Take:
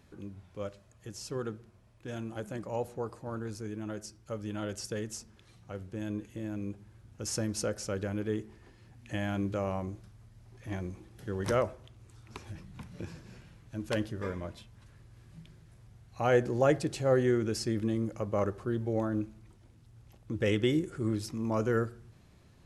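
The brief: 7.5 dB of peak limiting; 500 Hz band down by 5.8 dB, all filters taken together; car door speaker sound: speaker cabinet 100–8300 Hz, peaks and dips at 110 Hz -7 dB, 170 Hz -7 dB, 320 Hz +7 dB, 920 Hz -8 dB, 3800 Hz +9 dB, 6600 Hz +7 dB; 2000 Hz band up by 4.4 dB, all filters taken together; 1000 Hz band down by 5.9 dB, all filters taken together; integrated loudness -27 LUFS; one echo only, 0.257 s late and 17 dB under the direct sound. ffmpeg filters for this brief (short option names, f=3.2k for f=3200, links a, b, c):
-af "equalizer=f=500:t=o:g=-8.5,equalizer=f=1k:t=o:g=-6,equalizer=f=2k:t=o:g=8,alimiter=limit=-21.5dB:level=0:latency=1,highpass=100,equalizer=f=110:t=q:w=4:g=-7,equalizer=f=170:t=q:w=4:g=-7,equalizer=f=320:t=q:w=4:g=7,equalizer=f=920:t=q:w=4:g=-8,equalizer=f=3.8k:t=q:w=4:g=9,equalizer=f=6.6k:t=q:w=4:g=7,lowpass=f=8.3k:w=0.5412,lowpass=f=8.3k:w=1.3066,aecho=1:1:257:0.141,volume=9.5dB"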